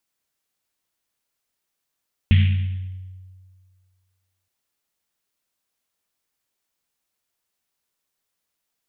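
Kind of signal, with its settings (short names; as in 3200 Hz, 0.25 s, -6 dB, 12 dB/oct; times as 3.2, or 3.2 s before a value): Risset drum length 2.17 s, pitch 93 Hz, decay 1.90 s, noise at 2600 Hz, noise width 1500 Hz, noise 10%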